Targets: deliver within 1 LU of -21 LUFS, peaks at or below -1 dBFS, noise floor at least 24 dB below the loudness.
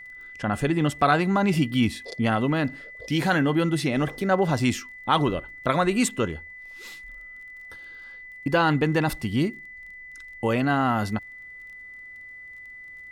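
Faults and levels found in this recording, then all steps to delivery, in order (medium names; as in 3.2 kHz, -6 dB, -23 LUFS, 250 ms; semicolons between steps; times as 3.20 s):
tick rate 21 per s; steady tone 2 kHz; tone level -40 dBFS; loudness -24.0 LUFS; peak level -7.5 dBFS; loudness target -21.0 LUFS
-> de-click; band-stop 2 kHz, Q 30; trim +3 dB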